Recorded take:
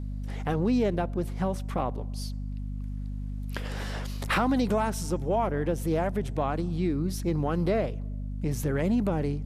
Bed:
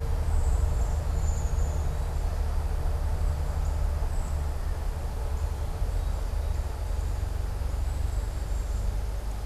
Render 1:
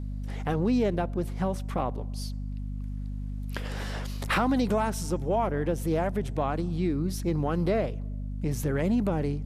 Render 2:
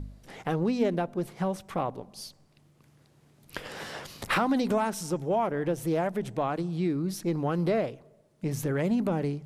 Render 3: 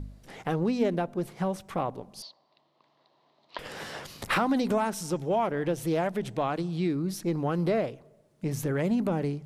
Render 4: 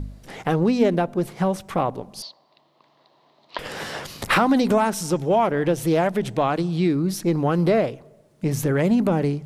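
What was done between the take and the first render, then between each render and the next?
nothing audible
de-hum 50 Hz, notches 5
2.22–3.59 speaker cabinet 450–4300 Hz, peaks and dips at 460 Hz -4 dB, 660 Hz +6 dB, 1000 Hz +9 dB, 1500 Hz -9 dB, 2400 Hz -6 dB, 4100 Hz +6 dB; 5.09–6.95 bell 3600 Hz +4.5 dB 1.5 oct
gain +7.5 dB

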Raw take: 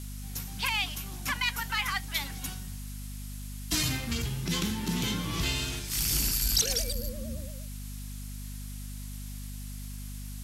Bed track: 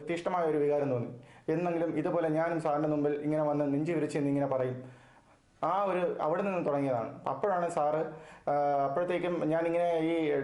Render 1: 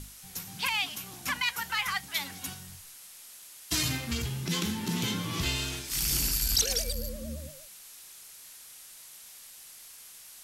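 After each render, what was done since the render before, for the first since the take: notches 50/100/150/200/250/300 Hz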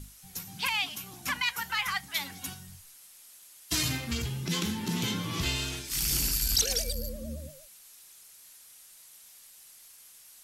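denoiser 6 dB, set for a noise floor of -50 dBFS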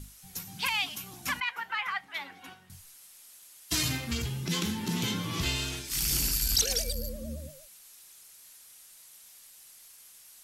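1.4–2.7 three-band isolator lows -18 dB, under 280 Hz, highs -20 dB, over 3000 Hz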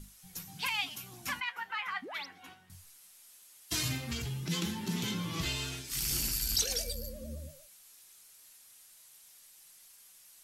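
flange 0.2 Hz, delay 4.9 ms, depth 7.5 ms, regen +55%; 2.02–2.26 painted sound rise 210–6200 Hz -44 dBFS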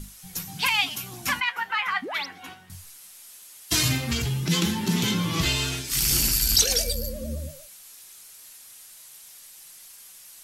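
gain +10.5 dB

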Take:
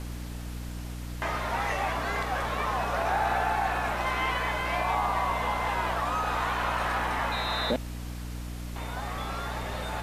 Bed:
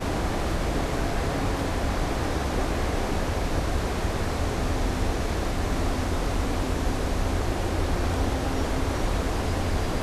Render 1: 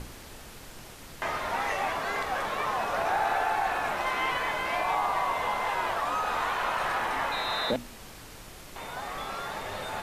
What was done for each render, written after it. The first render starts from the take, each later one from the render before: notches 60/120/180/240/300 Hz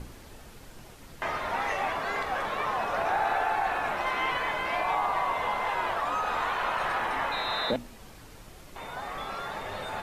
denoiser 6 dB, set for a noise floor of -46 dBFS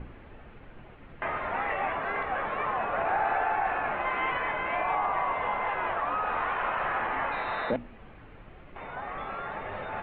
inverse Chebyshev low-pass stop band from 5200 Hz, stop band 40 dB; notch 950 Hz, Q 29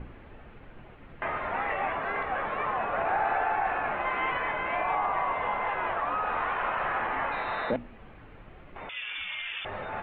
8.89–9.65 inverted band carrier 3500 Hz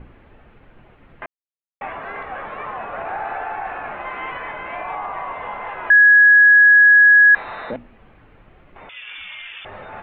1.26–1.81 mute; 5.9–7.35 bleep 1670 Hz -6.5 dBFS; 9.07–9.47 fast leveller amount 70%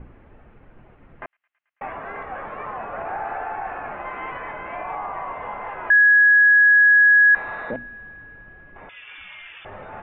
air absorption 430 m; thin delay 0.109 s, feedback 85%, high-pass 3200 Hz, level -21 dB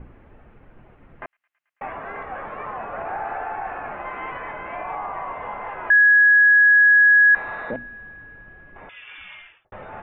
9.32–9.72 studio fade out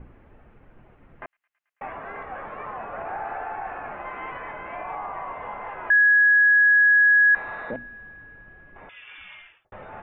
gain -3 dB

